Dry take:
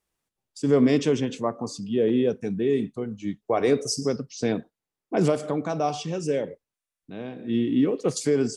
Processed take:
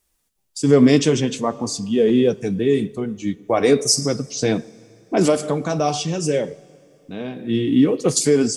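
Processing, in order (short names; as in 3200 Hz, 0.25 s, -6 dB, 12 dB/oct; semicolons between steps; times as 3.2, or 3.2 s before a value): high shelf 4400 Hz +10.5 dB; flange 0.58 Hz, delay 3 ms, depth 4.1 ms, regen -53%; low shelf 66 Hz +10 dB; on a send: reverb RT60 2.9 s, pre-delay 4 ms, DRR 22 dB; on the sum: gain +9 dB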